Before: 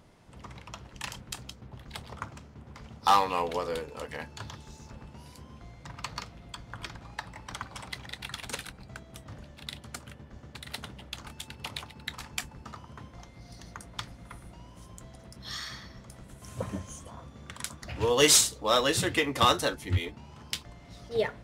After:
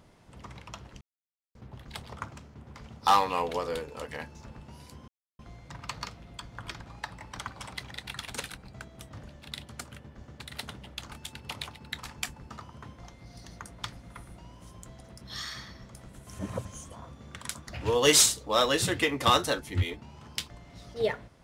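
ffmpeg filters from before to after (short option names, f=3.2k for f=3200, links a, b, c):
-filter_complex "[0:a]asplit=7[a][b][c][d][e][f][g];[a]atrim=end=1.01,asetpts=PTS-STARTPTS,afade=t=out:st=1.006:d=0.004:c=hsin[h];[b]atrim=start=1.01:end=1.55,asetpts=PTS-STARTPTS,volume=0[i];[c]atrim=start=1.55:end=4.352,asetpts=PTS-STARTPTS,afade=t=in:d=0.004:c=hsin[j];[d]atrim=start=4.808:end=5.54,asetpts=PTS-STARTPTS,afade=t=out:st=0.728:d=0.004:c=hsin,apad=pad_dur=0.31[k];[e]atrim=start=5.54:end=16.542,asetpts=PTS-STARTPTS,afade=t=in:d=0.004:c=hsin[l];[f]atrim=start=16.538:end=16.802,asetpts=PTS-STARTPTS,areverse[m];[g]atrim=start=16.798[n];[h][i][j]concat=n=3:v=0:a=1[o];[k][l]concat=n=2:v=0:a=1[p];[o][p]acrossfade=d=0.004:c1=hsin:c2=hsin[q];[q][m]acrossfade=d=0.004:c1=hsin:c2=hsin[r];[r][n]acrossfade=d=0.004:c1=hsin:c2=hsin"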